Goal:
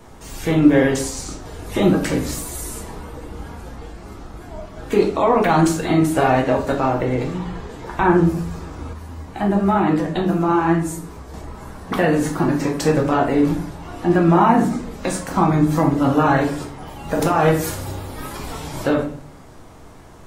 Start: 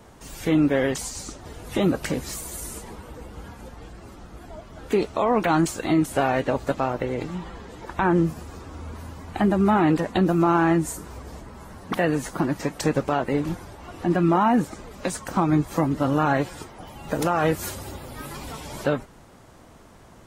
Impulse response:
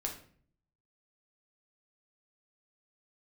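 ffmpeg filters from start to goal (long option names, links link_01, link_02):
-filter_complex "[1:a]atrim=start_sample=2205[link_01];[0:a][link_01]afir=irnorm=-1:irlink=0,asettb=1/sr,asplit=3[link_02][link_03][link_04];[link_02]atrim=end=8.934[link_05];[link_03]atrim=start=8.93:end=11.34,asetpts=PTS-STARTPTS,afade=type=in:duration=0.004:curve=qsin,afade=type=out:start_time=2.406:duration=0.004:curve=qsin,flanger=delay=9.4:depth=6.5:regen=55:speed=1:shape=sinusoidal[link_06];[link_04]atrim=start=11.336[link_07];[link_05][link_06]acrossfade=duration=0.004:curve1=hsin:curve2=qsin[link_08];[link_08][link_07]acrossfade=duration=0.004:curve1=qsin:curve2=hsin,volume=4dB"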